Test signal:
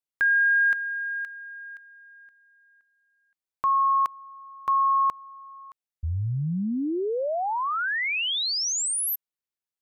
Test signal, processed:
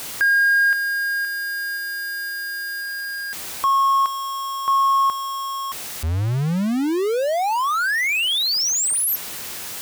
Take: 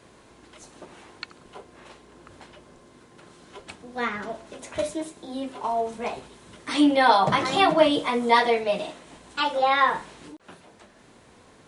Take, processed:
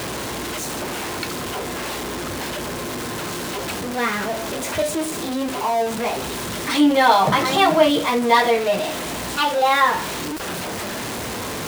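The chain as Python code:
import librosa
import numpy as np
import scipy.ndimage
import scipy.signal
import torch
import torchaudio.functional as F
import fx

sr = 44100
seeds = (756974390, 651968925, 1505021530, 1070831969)

y = x + 0.5 * 10.0 ** (-24.5 / 20.0) * np.sign(x)
y = scipy.signal.sosfilt(scipy.signal.butter(2, 49.0, 'highpass', fs=sr, output='sos'), y)
y = y * librosa.db_to_amplitude(2.0)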